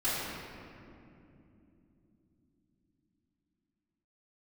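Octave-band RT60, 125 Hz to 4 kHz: 5.4, 5.7, 3.6, 2.3, 2.1, 1.4 seconds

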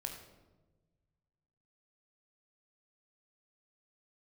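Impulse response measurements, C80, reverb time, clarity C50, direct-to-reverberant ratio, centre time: 8.0 dB, 1.2 s, 5.5 dB, 2.5 dB, 30 ms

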